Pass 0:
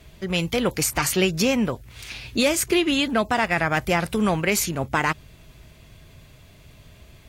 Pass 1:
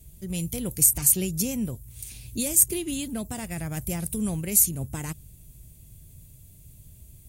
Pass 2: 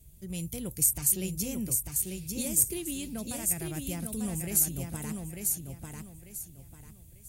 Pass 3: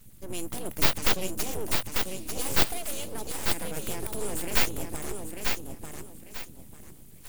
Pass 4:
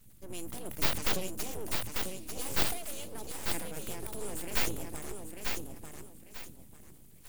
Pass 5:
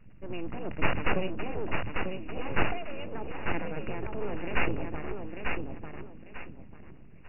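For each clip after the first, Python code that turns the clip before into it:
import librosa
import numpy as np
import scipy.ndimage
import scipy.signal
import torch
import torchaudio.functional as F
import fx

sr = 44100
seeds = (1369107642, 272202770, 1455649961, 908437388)

y1 = fx.curve_eq(x, sr, hz=(120.0, 1300.0, 5000.0, 9100.0), db=(0, -23, -10, 10))
y2 = fx.echo_feedback(y1, sr, ms=895, feedback_pct=29, wet_db=-4.5)
y2 = y2 * librosa.db_to_amplitude(-6.0)
y3 = np.abs(y2)
y3 = y3 * librosa.db_to_amplitude(4.5)
y4 = fx.sustainer(y3, sr, db_per_s=81.0)
y4 = y4 * librosa.db_to_amplitude(-6.5)
y5 = fx.brickwall_lowpass(y4, sr, high_hz=2900.0)
y5 = y5 * librosa.db_to_amplitude(6.5)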